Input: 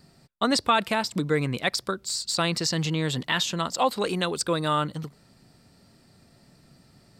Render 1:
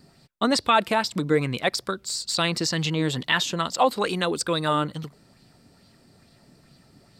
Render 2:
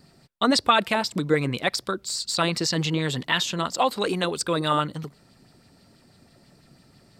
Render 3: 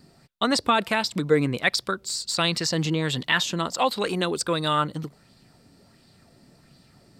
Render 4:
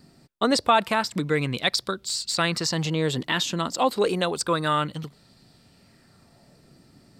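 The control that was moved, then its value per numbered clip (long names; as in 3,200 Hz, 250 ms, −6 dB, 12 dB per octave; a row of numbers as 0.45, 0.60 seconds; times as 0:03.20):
auto-filter bell, speed: 2.3, 6.1, 1.4, 0.28 Hertz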